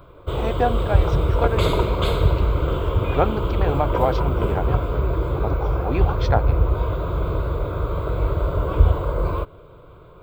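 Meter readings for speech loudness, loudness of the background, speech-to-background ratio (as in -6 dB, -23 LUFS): -27.5 LUFS, -22.5 LUFS, -5.0 dB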